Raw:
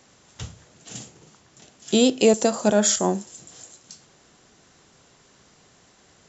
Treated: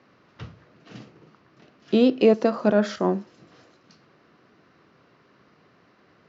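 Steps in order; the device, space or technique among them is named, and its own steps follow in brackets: Bessel low-pass 2800 Hz, order 8; car door speaker (speaker cabinet 110–6500 Hz, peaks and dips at 310 Hz +3 dB, 810 Hz -5 dB, 1200 Hz +4 dB, 3400 Hz -7 dB)

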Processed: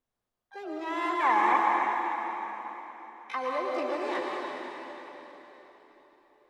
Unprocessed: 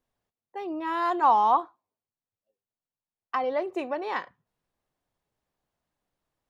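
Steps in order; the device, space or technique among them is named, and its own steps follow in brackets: dynamic EQ 710 Hz, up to -5 dB, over -39 dBFS, Q 5.2; shimmer-style reverb (harmoniser +12 st -9 dB; reverb RT60 4.1 s, pre-delay 0.1 s, DRR -2 dB); gain -5.5 dB

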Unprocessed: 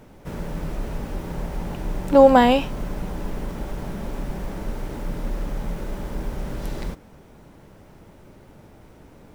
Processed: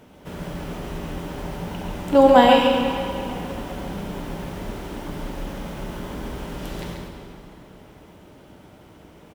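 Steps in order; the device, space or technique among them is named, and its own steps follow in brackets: PA in a hall (HPF 100 Hz 6 dB/oct; bell 3100 Hz +6 dB 0.42 oct; echo 0.137 s -5 dB; reverb RT60 3.0 s, pre-delay 3 ms, DRR 2.5 dB); 2.55–3.3 notch 730 Hz, Q 12; gain -1 dB

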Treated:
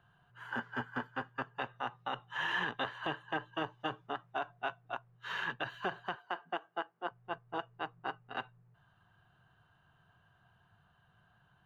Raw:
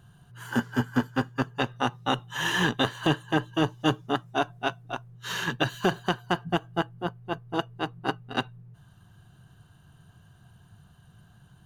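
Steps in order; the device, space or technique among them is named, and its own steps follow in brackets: 6.15–7.11 HPF 240 Hz 24 dB/oct; DJ mixer with the lows and highs turned down (three-band isolator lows -13 dB, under 550 Hz, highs -23 dB, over 3000 Hz; limiter -21 dBFS, peak gain reduction 8.5 dB); gain -3.5 dB

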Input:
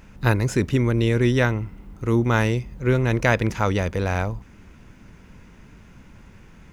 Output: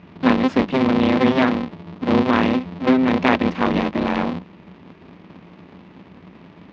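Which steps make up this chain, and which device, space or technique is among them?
ring modulator pedal into a guitar cabinet (polarity switched at an audio rate 130 Hz; speaker cabinet 100–4000 Hz, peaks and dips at 130 Hz -10 dB, 180 Hz +9 dB, 260 Hz +5 dB, 990 Hz +4 dB, 1500 Hz -4 dB); gain +1.5 dB

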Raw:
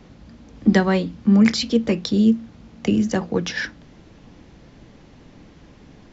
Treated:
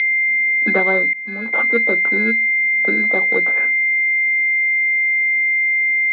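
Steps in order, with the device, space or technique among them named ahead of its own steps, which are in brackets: toy sound module (decimation joined by straight lines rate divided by 8×; pulse-width modulation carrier 2100 Hz; speaker cabinet 620–4400 Hz, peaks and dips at 680 Hz -4 dB, 1000 Hz -6 dB, 1500 Hz +4 dB, 2400 Hz +4 dB, 3500 Hz +9 dB); 1.13–1.53 expander -18 dBFS; gain +9 dB

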